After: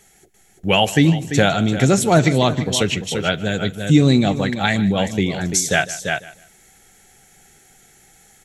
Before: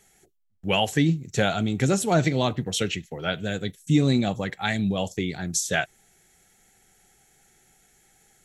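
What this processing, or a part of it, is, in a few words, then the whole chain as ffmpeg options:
ducked delay: -filter_complex "[0:a]asplit=3[s0][s1][s2];[s1]adelay=342,volume=0.794[s3];[s2]apad=whole_len=387684[s4];[s3][s4]sidechaincompress=threshold=0.0224:ratio=8:attack=46:release=438[s5];[s0][s5]amix=inputs=2:normalize=0,aecho=1:1:152|304:0.126|0.029,volume=2.24"

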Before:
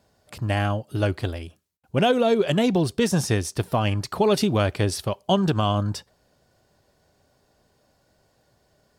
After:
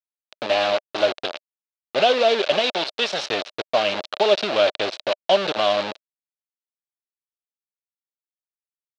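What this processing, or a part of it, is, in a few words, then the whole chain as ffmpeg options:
hand-held game console: -filter_complex "[0:a]asettb=1/sr,asplit=3[s0][s1][s2];[s0]atrim=end=2.594[s3];[s1]atrim=start=2.59:end=3.26,asetpts=PTS-STARTPTS,afade=t=in:d=0.004:c=qsin,afade=t=out:st=0.666:d=0.004:c=qsin,tiltshelf=f=1300:g=-5.5[s4];[s2]atrim=start=3.256[s5];[s3][s4]acrossfade=d=0.004:c1=hsin:c2=qsin[s6];[s6][s5]acrossfade=d=0.004:c1=qsin:c2=hsin,acrusher=bits=3:mix=0:aa=0.000001,highpass=490,equalizer=f=610:t=q:w=4:g=9,equalizer=f=1000:t=q:w=4:g=-4,equalizer=f=1900:t=q:w=4:g=-4,equalizer=f=2700:t=q:w=4:g=3,equalizer=f=3900:t=q:w=4:g=6,lowpass=f=4600:w=0.5412,lowpass=f=4600:w=1.3066,volume=1.19"

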